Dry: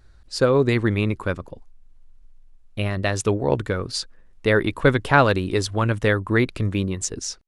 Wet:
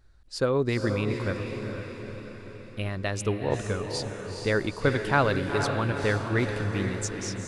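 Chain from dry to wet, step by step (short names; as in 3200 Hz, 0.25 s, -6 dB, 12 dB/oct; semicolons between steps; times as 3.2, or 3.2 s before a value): diffused feedback echo 0.458 s, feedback 57%, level -6 dB; gain -7 dB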